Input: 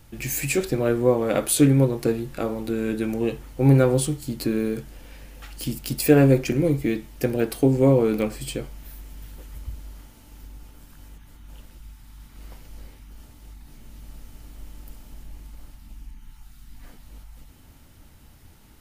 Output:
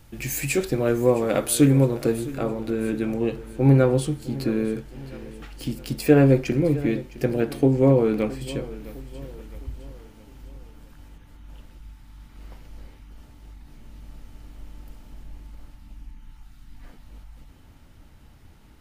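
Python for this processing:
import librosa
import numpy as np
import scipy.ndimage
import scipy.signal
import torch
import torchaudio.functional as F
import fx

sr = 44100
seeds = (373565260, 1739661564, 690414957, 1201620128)

y = fx.high_shelf(x, sr, hz=6000.0, db=fx.steps((0.0, -2.0), (2.33, -11.5)))
y = fx.echo_feedback(y, sr, ms=661, feedback_pct=46, wet_db=-17.5)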